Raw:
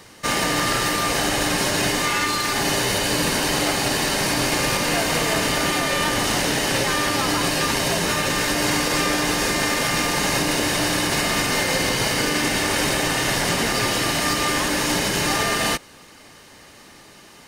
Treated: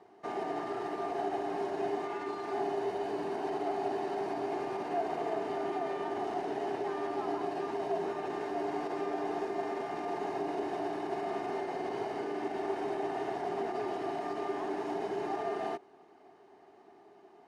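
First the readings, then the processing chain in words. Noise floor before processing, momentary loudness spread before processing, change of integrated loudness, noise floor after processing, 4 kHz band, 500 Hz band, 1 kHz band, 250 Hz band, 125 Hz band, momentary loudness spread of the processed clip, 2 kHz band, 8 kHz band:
-47 dBFS, 1 LU, -15.5 dB, -59 dBFS, -30.5 dB, -7.5 dB, -10.5 dB, -13.5 dB, -24.5 dB, 2 LU, -24.0 dB, under -35 dB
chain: limiter -14 dBFS, peak gain reduction 6 dB; double band-pass 530 Hz, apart 0.83 oct

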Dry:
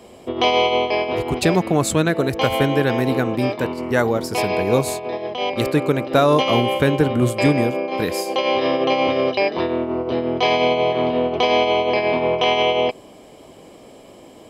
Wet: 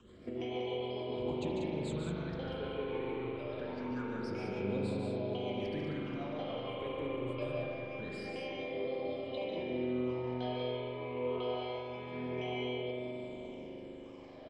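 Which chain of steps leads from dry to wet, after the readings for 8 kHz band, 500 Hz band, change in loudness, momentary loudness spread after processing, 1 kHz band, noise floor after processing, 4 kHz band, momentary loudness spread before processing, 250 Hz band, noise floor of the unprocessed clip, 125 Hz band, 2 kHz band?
under -30 dB, -18.5 dB, -19.0 dB, 6 LU, -23.5 dB, -49 dBFS, -22.0 dB, 6 LU, -17.0 dB, -44 dBFS, -17.5 dB, -21.5 dB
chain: dynamic EQ 2800 Hz, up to -6 dB, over -41 dBFS, Q 6.2; limiter -16.5 dBFS, peak gain reduction 11.5 dB; compressor 4:1, threshold -27 dBFS, peak gain reduction 6.5 dB; crackle 120/s -39 dBFS; phaser stages 8, 0.25 Hz, lowest notch 200–2000 Hz; rotary speaker horn 6.7 Hz, later 1 Hz, at 6.59; flange 1.2 Hz, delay 0.7 ms, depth 5.3 ms, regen +72%; air absorption 130 m; loudspeakers at several distances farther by 50 m -7 dB, 65 m -6 dB; spring tank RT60 3.7 s, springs 40 ms, chirp 40 ms, DRR -2 dB; gain -3.5 dB

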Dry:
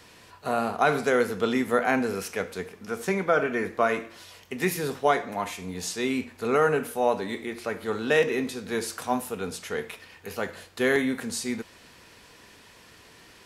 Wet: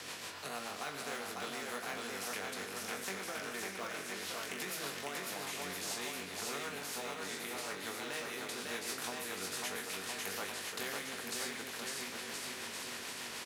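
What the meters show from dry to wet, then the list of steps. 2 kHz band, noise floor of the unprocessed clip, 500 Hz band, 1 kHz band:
-10.0 dB, -53 dBFS, -18.0 dB, -14.0 dB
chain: in parallel at -9 dB: short-mantissa float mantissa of 2-bit; on the sum: compressor 4:1, threshold -37 dBFS, peak gain reduction 19 dB; low shelf 460 Hz -10.5 dB; flutter echo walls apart 3.6 m, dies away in 0.24 s; rotary speaker horn 6.7 Hz; HPF 170 Hz 12 dB/oct; high shelf 5200 Hz -8.5 dB; on a send: bouncing-ball echo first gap 0.55 s, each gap 0.85×, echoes 5; on the sum: spectral compressor 2:1; gain +2 dB

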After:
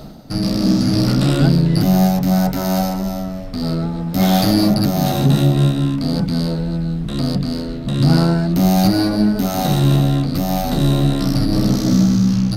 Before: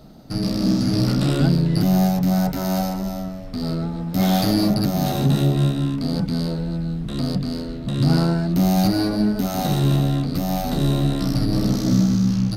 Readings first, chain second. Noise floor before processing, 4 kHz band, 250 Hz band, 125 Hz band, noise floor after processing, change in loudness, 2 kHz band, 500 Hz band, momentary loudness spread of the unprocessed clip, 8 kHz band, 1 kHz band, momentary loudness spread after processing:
-30 dBFS, +4.5 dB, +4.0 dB, +4.0 dB, -26 dBFS, +4.0 dB, +4.5 dB, +4.0 dB, 8 LU, +4.5 dB, +4.5 dB, 8 LU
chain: notches 60/120/180/240/300/360/420 Hz; reverse; upward compressor, threshold -27 dBFS; reverse; gain +4.5 dB

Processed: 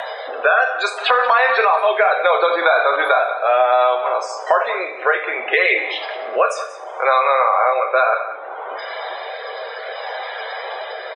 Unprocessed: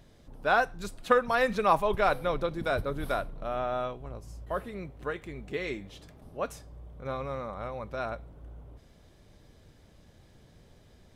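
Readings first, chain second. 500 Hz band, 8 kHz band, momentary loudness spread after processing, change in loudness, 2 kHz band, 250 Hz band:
+13.5 dB, +11.0 dB, 14 LU, +13.5 dB, +17.0 dB, -1.5 dB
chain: HPF 660 Hz 24 dB/oct; high shelf 5700 Hz -11 dB; loudest bins only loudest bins 64; compressor, threshold -31 dBFS, peak gain reduction 11.5 dB; rotary speaker horn 0.65 Hz; outdoor echo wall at 31 m, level -15 dB; two-slope reverb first 0.42 s, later 1.8 s, from -25 dB, DRR 3 dB; maximiser +31 dB; three-band squash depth 70%; gain -4 dB

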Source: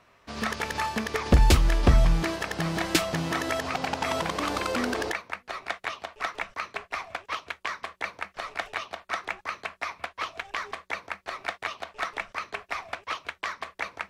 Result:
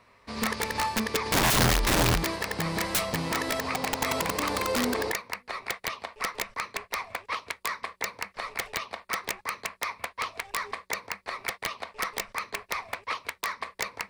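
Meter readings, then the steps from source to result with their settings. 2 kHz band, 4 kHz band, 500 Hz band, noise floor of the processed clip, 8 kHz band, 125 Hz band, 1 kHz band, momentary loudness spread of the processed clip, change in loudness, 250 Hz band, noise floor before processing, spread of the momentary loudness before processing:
+0.5 dB, +2.5 dB, 0.0 dB, -62 dBFS, +6.0 dB, -5.0 dB, +0.5 dB, 11 LU, 0.0 dB, -1.0 dB, -62 dBFS, 13 LU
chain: ripple EQ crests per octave 0.93, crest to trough 6 dB; wrapped overs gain 18 dB

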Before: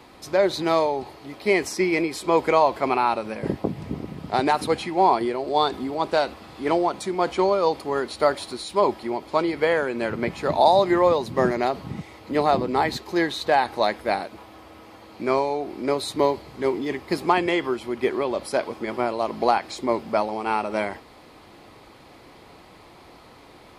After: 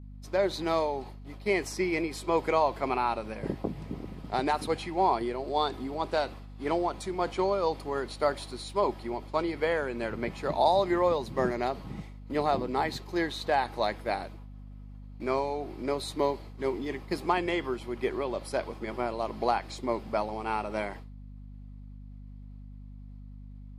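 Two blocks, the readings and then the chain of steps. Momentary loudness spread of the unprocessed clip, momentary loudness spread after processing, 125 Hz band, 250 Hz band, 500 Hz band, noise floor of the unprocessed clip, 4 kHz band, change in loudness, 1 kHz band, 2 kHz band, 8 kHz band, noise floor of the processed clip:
9 LU, 21 LU, -4.0 dB, -7.0 dB, -7.0 dB, -49 dBFS, -7.0 dB, -7.0 dB, -7.0 dB, -7.0 dB, -7.0 dB, -45 dBFS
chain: expander -34 dBFS; hum 50 Hz, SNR 14 dB; gain -7 dB

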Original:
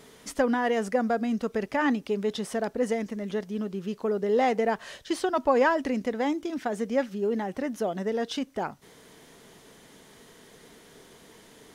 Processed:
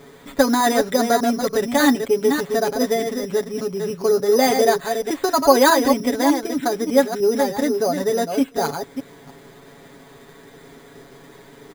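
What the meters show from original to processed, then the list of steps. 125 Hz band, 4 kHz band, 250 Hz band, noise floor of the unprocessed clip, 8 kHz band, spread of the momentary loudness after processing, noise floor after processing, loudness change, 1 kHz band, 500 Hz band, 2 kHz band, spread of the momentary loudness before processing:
+4.0 dB, +13.0 dB, +8.0 dB, -54 dBFS, +16.5 dB, 9 LU, -46 dBFS, +9.0 dB, +9.0 dB, +9.0 dB, +7.5 dB, 8 LU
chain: reverse delay 0.3 s, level -6 dB; careless resampling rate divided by 8×, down filtered, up hold; comb 7.2 ms, depth 76%; gain +6 dB

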